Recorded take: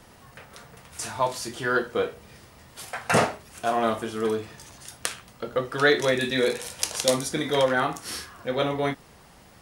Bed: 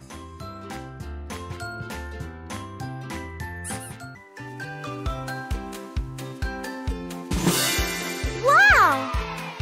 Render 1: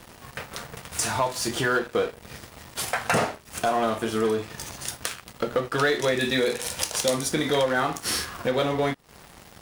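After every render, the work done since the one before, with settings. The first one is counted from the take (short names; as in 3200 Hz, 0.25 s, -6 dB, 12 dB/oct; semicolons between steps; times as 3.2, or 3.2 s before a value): compressor 3:1, threshold -35 dBFS, peak gain reduction 15 dB; sample leveller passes 3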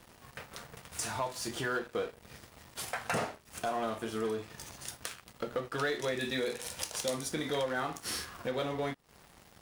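gain -10 dB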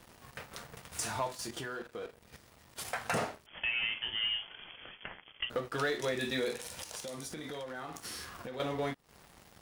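1.35–2.85 level quantiser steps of 10 dB; 3.46–5.5 inverted band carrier 3300 Hz; 6.58–8.6 compressor 10:1, threshold -38 dBFS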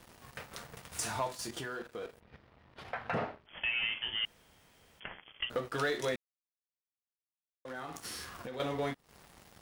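2.2–3.49 air absorption 340 m; 4.25–5 room tone; 6.16–7.65 mute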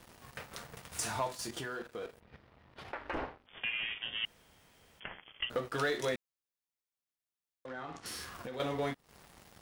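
2.92–4.24 ring modulator 170 Hz; 7.66–8.06 air absorption 120 m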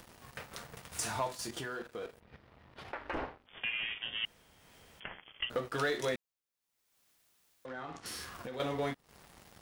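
upward compressor, threshold -52 dBFS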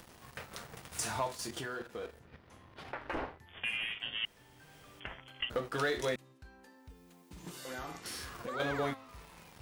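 add bed -26 dB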